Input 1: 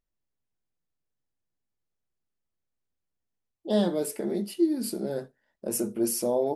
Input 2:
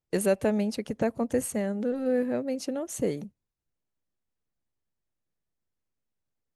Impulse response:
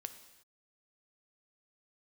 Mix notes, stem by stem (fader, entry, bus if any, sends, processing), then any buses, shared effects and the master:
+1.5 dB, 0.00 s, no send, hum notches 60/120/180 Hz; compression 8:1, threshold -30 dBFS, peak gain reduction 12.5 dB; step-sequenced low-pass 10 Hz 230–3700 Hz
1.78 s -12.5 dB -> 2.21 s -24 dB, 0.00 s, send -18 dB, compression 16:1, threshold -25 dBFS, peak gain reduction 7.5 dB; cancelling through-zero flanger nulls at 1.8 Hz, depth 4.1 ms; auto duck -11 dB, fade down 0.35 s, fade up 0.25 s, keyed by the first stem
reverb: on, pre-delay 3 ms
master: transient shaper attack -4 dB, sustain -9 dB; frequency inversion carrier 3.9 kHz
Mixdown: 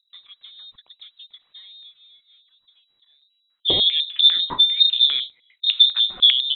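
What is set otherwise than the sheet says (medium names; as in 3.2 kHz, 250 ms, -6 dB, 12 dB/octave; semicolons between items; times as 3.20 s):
stem 1 +1.5 dB -> +12.0 dB; master: missing transient shaper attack -4 dB, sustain -9 dB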